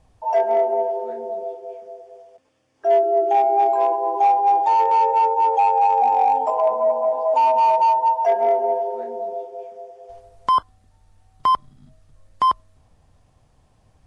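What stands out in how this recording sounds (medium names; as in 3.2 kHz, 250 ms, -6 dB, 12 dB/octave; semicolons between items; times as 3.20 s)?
noise floor -60 dBFS; spectral tilt +10.0 dB/octave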